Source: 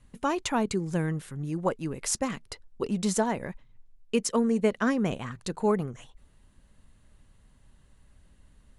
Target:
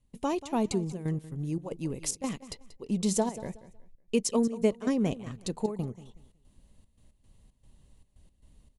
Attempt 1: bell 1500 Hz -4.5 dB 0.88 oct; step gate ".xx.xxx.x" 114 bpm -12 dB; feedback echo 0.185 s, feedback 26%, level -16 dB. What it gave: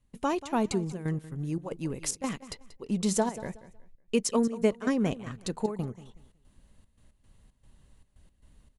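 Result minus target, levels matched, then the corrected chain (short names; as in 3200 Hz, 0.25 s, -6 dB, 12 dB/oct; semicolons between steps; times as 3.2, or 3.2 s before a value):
2000 Hz band +4.5 dB
bell 1500 Hz -13 dB 0.88 oct; step gate ".xx.xxx.x" 114 bpm -12 dB; feedback echo 0.185 s, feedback 26%, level -16 dB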